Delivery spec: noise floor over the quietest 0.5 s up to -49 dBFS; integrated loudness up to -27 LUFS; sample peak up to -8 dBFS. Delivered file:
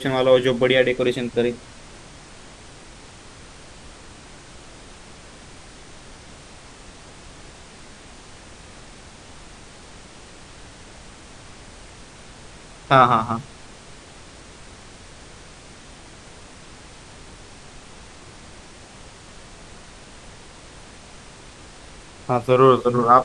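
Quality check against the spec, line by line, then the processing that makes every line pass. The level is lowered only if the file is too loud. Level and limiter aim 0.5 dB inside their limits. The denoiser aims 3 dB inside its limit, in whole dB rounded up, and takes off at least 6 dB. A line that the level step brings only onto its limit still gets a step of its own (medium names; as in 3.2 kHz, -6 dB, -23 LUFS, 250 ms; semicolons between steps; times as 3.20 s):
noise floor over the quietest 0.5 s -43 dBFS: fail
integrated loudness -18.0 LUFS: fail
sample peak -2.0 dBFS: fail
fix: trim -9.5 dB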